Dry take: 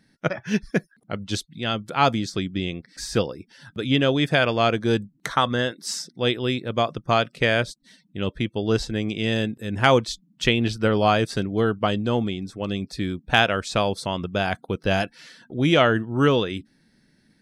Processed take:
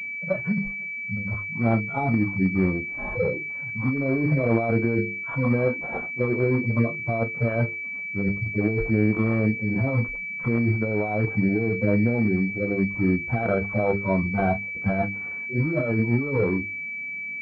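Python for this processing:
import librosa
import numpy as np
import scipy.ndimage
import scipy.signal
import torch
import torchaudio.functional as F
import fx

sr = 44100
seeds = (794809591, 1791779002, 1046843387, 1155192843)

p1 = fx.hpss_only(x, sr, part='harmonic')
p2 = fx.hum_notches(p1, sr, base_hz=50, count=9)
p3 = fx.over_compress(p2, sr, threshold_db=-27.0, ratio=-1.0)
p4 = p3 + fx.room_early_taps(p3, sr, ms=(26, 38), db=(-12.5, -18.0), dry=0)
p5 = fx.pwm(p4, sr, carrier_hz=2300.0)
y = p5 * librosa.db_to_amplitude(5.0)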